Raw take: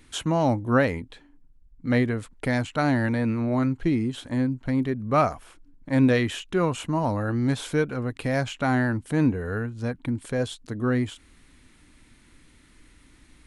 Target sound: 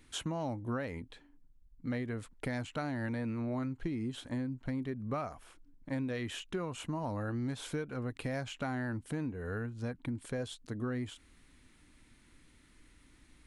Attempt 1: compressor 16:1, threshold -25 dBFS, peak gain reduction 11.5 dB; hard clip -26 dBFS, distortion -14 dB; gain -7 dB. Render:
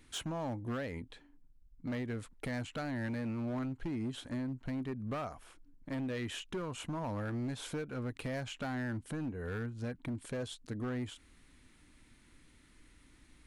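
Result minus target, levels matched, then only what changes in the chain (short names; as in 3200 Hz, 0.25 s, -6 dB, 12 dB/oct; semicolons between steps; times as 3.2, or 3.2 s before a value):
hard clip: distortion +24 dB
change: hard clip -18.5 dBFS, distortion -38 dB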